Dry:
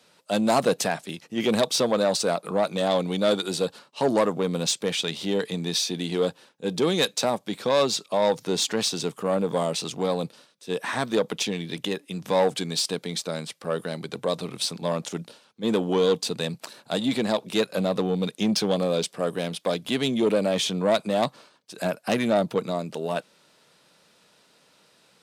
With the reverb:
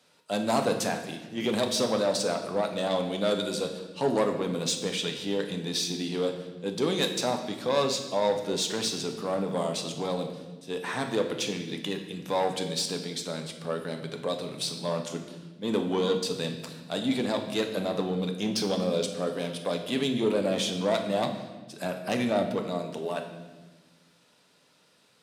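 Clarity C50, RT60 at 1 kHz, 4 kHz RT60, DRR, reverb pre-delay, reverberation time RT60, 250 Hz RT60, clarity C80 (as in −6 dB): 8.0 dB, 1.1 s, 1.1 s, 4.0 dB, 7 ms, 1.3 s, 2.0 s, 10.0 dB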